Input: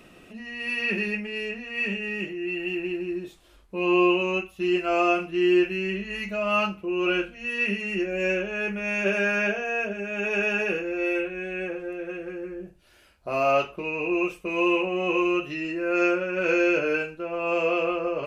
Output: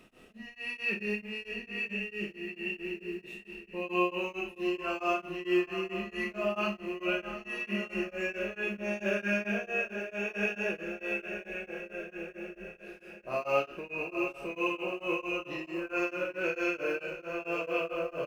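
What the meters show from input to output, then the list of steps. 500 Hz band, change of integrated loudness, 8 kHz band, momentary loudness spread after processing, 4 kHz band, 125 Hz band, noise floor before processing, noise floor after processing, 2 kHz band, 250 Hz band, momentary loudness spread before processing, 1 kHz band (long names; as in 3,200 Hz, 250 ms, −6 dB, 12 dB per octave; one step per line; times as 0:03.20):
−8.0 dB, −8.0 dB, can't be measured, 10 LU, −7.5 dB, −7.0 dB, −55 dBFS, −56 dBFS, −7.0 dB, −9.0 dB, 10 LU, −8.0 dB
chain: double-tracking delay 24 ms −6 dB
feedback delay with all-pass diffusion 761 ms, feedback 59%, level −10.5 dB
log-companded quantiser 8 bits
four-comb reverb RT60 0.37 s, combs from 28 ms, DRR 3.5 dB
tremolo along a rectified sine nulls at 4.5 Hz
level −7 dB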